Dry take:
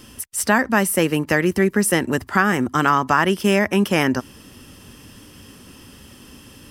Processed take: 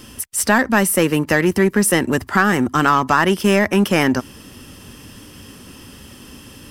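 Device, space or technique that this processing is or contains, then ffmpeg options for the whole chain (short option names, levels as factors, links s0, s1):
parallel distortion: -filter_complex "[0:a]asplit=2[s0][s1];[s1]asoftclip=type=hard:threshold=0.126,volume=0.562[s2];[s0][s2]amix=inputs=2:normalize=0"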